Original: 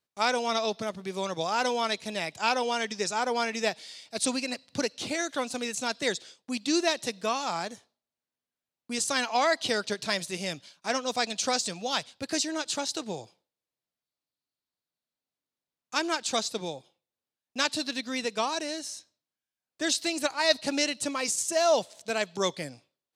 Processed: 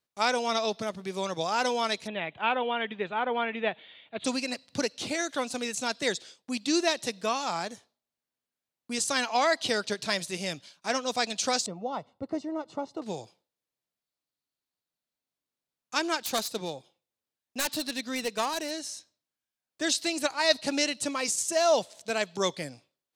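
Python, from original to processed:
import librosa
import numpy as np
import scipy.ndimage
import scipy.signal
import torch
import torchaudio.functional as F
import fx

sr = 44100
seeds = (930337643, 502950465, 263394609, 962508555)

y = fx.ellip_lowpass(x, sr, hz=3400.0, order=4, stop_db=40, at=(2.06, 4.24), fade=0.02)
y = fx.savgol(y, sr, points=65, at=(11.66, 13.02))
y = fx.self_delay(y, sr, depth_ms=0.2, at=(16.23, 18.71))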